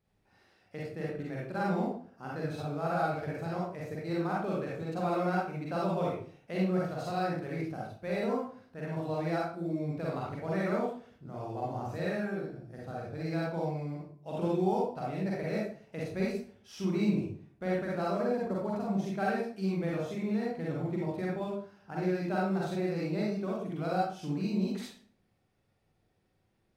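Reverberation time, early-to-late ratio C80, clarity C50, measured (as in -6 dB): 0.45 s, 5.0 dB, -1.0 dB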